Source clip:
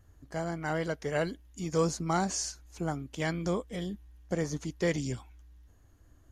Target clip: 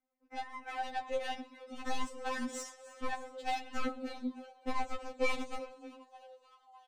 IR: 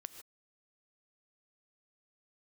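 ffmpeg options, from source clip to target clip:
-filter_complex "[0:a]acrossover=split=360|2400[link_01][link_02][link_03];[link_02]acompressor=threshold=-40dB:ratio=12[link_04];[link_01][link_04][link_03]amix=inputs=3:normalize=0,lowshelf=frequency=410:gain=-2.5,agate=range=-16dB:threshold=-52dB:ratio=16:detection=peak,asetrate=40517,aresample=44100,highpass=frequency=130:poles=1,asplit=2[link_05][link_06];[link_06]acrusher=bits=4:mix=0:aa=0.000001,volume=-7dB[link_07];[link_05][link_07]amix=inputs=2:normalize=0[link_08];[1:a]atrim=start_sample=2205,afade=type=out:start_time=0.18:duration=0.01,atrim=end_sample=8379[link_09];[link_08][link_09]afir=irnorm=-1:irlink=0,asetrate=58866,aresample=44100,atempo=0.749154,adynamicsmooth=sensitivity=3.5:basefreq=2700,asplit=8[link_10][link_11][link_12][link_13][link_14][link_15][link_16][link_17];[link_11]adelay=305,afreqshift=110,volume=-16dB[link_18];[link_12]adelay=610,afreqshift=220,volume=-19.9dB[link_19];[link_13]adelay=915,afreqshift=330,volume=-23.8dB[link_20];[link_14]adelay=1220,afreqshift=440,volume=-27.6dB[link_21];[link_15]adelay=1525,afreqshift=550,volume=-31.5dB[link_22];[link_16]adelay=1830,afreqshift=660,volume=-35.4dB[link_23];[link_17]adelay=2135,afreqshift=770,volume=-39.3dB[link_24];[link_10][link_18][link_19][link_20][link_21][link_22][link_23][link_24]amix=inputs=8:normalize=0,aeval=exprs='0.0531*(cos(1*acos(clip(val(0)/0.0531,-1,1)))-cos(1*PI/2))+0.0075*(cos(4*acos(clip(val(0)/0.0531,-1,1)))-cos(4*PI/2))+0.00237*(cos(6*acos(clip(val(0)/0.0531,-1,1)))-cos(6*PI/2))+0.00211*(cos(7*acos(clip(val(0)/0.0531,-1,1)))-cos(7*PI/2))':channel_layout=same,afftfilt=real='re*3.46*eq(mod(b,12),0)':imag='im*3.46*eq(mod(b,12),0)':win_size=2048:overlap=0.75,volume=10dB"

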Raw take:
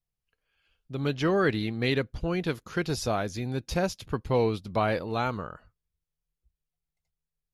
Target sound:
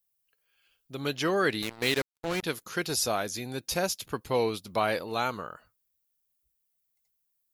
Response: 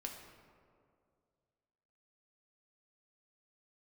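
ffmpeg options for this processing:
-filter_complex "[0:a]aemphasis=mode=production:type=bsi,asettb=1/sr,asplit=3[link_01][link_02][link_03];[link_01]atrim=end=1.624[link_04];[link_02]atrim=start=1.62:end=2.43,asetpts=PTS-STARTPTS,afade=type=in:duration=0.004:curve=qsin,afade=type=out:start_time=0.806:duration=0.004:curve=qsin,acrusher=bits=4:mix=0:aa=0.5[link_05];[link_03]atrim=start=2.426[link_06];[link_04][link_05]acrossfade=duration=0.004:curve1=hsin:curve2=qsin[link_07];[link_07][link_06]acrossfade=duration=0.004:curve1=qsin:curve2=hsin"

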